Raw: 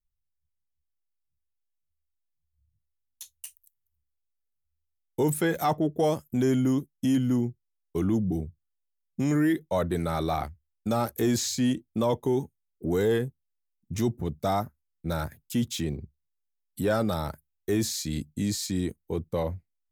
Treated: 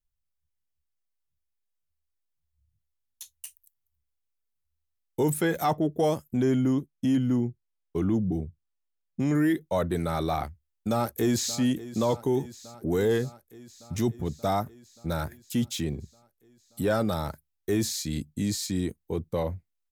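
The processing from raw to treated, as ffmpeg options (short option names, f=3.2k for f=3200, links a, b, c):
-filter_complex "[0:a]asettb=1/sr,asplit=3[a][b][c];[a]atrim=end=6.324[d];[b]atrim=start=6.32:end=9.35,asetpts=PTS-STARTPTS,afade=t=in:d=0.004:c=qsin,afade=t=out:st=3.026:d=0.004:c=qsin,lowpass=f=3.8k:p=1[e];[c]atrim=start=9.346[f];[d][e]acrossfade=d=0.004:c1=hsin:c2=qsin[g];[g][f]acrossfade=d=0.004:c1=qsin:c2=hsin,asplit=2[h][i];[i]afade=t=in:st=10.9:d=0.01,afade=t=out:st=11.58:d=0.01,aecho=0:1:580|1160|1740|2320|2900|3480|4060|4640|5220|5800:0.158489|0.118867|0.0891502|0.0668627|0.050147|0.0376103|0.0282077|0.0211558|0.0158668|0.0119001[j];[h][j]amix=inputs=2:normalize=0"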